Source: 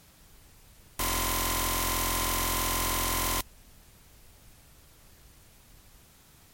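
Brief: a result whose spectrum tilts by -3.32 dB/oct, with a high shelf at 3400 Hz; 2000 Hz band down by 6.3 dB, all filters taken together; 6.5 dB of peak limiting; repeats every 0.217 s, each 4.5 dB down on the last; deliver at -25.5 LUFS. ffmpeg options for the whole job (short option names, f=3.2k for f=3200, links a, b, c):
-af "equalizer=f=2k:t=o:g=-5,highshelf=f=3.4k:g=-8,alimiter=level_in=2.5dB:limit=-24dB:level=0:latency=1,volume=-2.5dB,aecho=1:1:217|434|651|868|1085|1302|1519|1736|1953:0.596|0.357|0.214|0.129|0.0772|0.0463|0.0278|0.0167|0.01,volume=10.5dB"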